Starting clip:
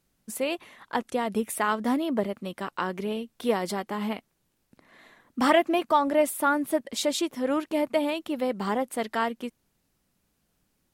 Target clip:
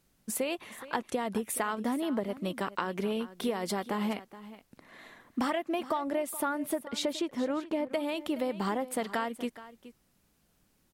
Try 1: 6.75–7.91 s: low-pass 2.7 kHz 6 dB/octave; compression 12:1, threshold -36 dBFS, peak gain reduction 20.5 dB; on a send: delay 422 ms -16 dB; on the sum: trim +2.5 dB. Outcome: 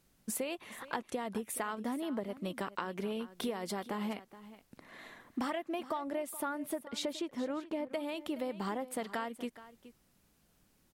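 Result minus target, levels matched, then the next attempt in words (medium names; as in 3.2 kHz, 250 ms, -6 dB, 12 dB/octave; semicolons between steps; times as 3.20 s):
compression: peak gain reduction +5.5 dB
6.75–7.91 s: low-pass 2.7 kHz 6 dB/octave; compression 12:1, threshold -30 dBFS, peak gain reduction 15 dB; on a send: delay 422 ms -16 dB; on the sum: trim +2.5 dB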